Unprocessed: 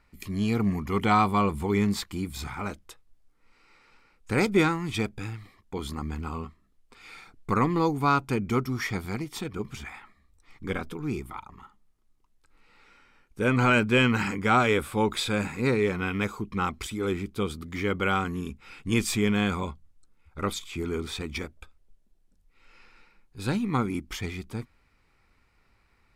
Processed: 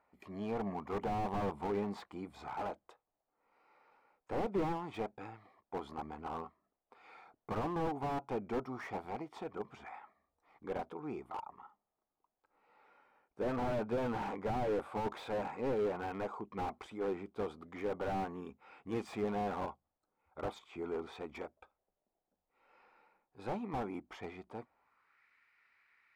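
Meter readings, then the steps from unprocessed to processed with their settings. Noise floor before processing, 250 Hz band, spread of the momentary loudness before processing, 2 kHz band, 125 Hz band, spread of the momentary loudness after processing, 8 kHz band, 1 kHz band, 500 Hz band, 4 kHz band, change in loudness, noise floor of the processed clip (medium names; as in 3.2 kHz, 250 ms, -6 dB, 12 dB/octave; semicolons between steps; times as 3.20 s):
-66 dBFS, -13.5 dB, 16 LU, -19.0 dB, -16.5 dB, 14 LU, under -20 dB, -10.0 dB, -8.0 dB, -20.0 dB, -12.0 dB, under -85 dBFS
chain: dynamic bell 850 Hz, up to +4 dB, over -45 dBFS, Q 3; band-pass sweep 710 Hz -> 1.9 kHz, 24.72–25.24 s; slew-rate limiter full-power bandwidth 9.1 Hz; trim +3 dB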